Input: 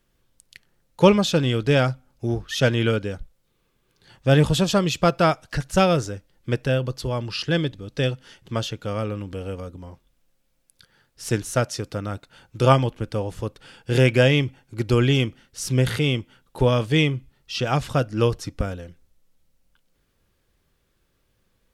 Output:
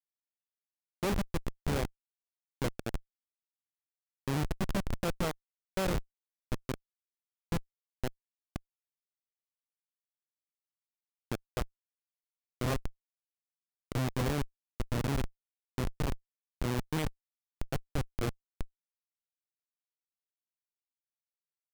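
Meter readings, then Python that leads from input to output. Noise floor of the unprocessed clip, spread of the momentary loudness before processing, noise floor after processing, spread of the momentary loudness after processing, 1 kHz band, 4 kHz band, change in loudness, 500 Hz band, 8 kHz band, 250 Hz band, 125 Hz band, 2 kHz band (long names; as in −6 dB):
−69 dBFS, 14 LU, below −85 dBFS, 13 LU, −15.0 dB, −17.5 dB, −14.0 dB, −18.0 dB, −12.5 dB, −14.5 dB, −15.5 dB, −16.0 dB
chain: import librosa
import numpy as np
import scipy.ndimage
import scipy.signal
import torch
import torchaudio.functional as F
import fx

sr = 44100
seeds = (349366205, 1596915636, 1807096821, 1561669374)

y = fx.echo_alternate(x, sr, ms=620, hz=840.0, feedback_pct=60, wet_db=-11.5)
y = fx.rev_schroeder(y, sr, rt60_s=0.66, comb_ms=33, drr_db=12.5)
y = fx.schmitt(y, sr, flips_db=-14.0)
y = F.gain(torch.from_numpy(y), -6.0).numpy()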